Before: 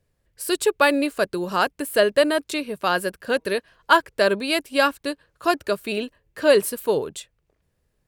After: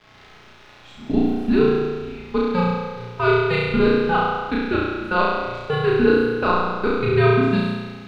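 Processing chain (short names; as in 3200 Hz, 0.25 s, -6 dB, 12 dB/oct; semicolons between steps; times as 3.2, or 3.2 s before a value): whole clip reversed; level quantiser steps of 21 dB; crackle 560/s -33 dBFS; frequency shift -170 Hz; air absorption 240 m; flutter echo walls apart 5.8 m, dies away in 1.4 s; reverb RT60 0.70 s, pre-delay 5 ms, DRR 5.5 dB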